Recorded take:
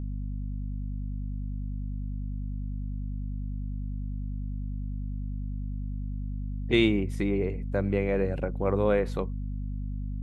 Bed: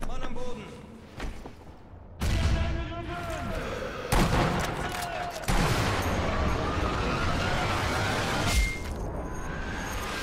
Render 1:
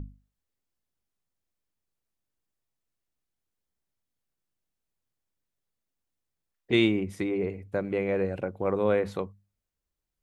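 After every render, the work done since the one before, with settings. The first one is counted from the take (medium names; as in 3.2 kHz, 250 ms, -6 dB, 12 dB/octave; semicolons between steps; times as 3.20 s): hum notches 50/100/150/200/250 Hz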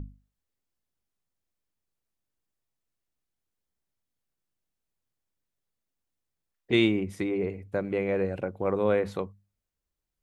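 no audible change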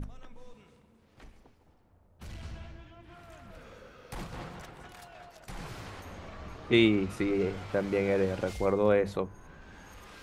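add bed -17 dB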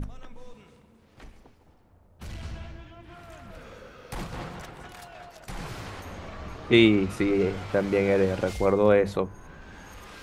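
trim +5 dB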